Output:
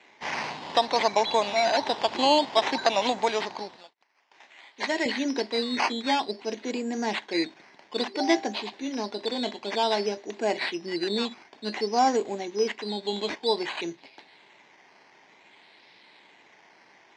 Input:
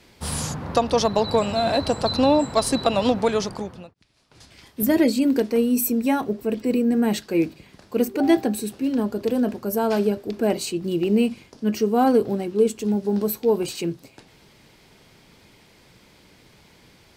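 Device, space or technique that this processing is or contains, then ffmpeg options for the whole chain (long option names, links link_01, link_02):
circuit-bent sampling toy: -filter_complex "[0:a]acrusher=samples=9:mix=1:aa=0.000001:lfo=1:lforange=5.4:lforate=0.55,highpass=450,equalizer=frequency=500:width_type=q:width=4:gain=-7,equalizer=frequency=900:width_type=q:width=4:gain=4,equalizer=frequency=1300:width_type=q:width=4:gain=-8,equalizer=frequency=2000:width_type=q:width=4:gain=5,equalizer=frequency=4000:width_type=q:width=4:gain=5,lowpass=frequency=5600:width=0.5412,lowpass=frequency=5600:width=1.3066,asettb=1/sr,asplit=3[link_01][link_02][link_03];[link_01]atrim=end=3.764[link_04];[link_02]atrim=start=3.76:end=5.06,asetpts=PTS-STARTPTS,afade=type=in:duration=0.004:curve=qsin,afade=type=out:start_time=1.296:duration=0.004:curve=qsin,highpass=frequency=620:poles=1[link_05];[link_03]atrim=start=5.056[link_06];[link_04][link_05]acrossfade=duration=0.004:curve1=hsin:curve2=qsin[link_07];[link_07][link_06]acrossfade=duration=0.004:curve1=qsin:curve2=hsin"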